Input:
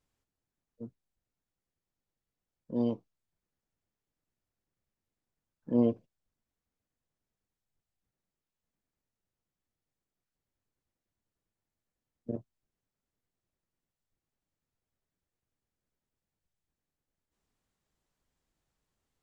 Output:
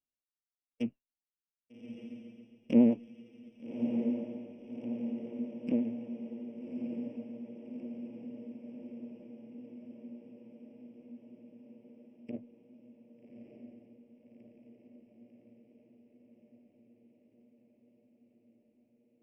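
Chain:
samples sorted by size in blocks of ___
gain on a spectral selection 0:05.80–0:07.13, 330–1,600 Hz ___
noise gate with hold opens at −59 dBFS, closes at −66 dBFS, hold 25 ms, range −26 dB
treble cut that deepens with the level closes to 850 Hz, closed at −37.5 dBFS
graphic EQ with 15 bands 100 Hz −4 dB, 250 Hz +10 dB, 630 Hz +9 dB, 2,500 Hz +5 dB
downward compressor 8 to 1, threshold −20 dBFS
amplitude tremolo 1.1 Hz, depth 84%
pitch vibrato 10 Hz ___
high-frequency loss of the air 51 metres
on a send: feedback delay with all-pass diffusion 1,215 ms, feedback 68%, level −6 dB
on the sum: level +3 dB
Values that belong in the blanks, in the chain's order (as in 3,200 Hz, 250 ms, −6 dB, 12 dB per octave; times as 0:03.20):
16 samples, −8 dB, 67 cents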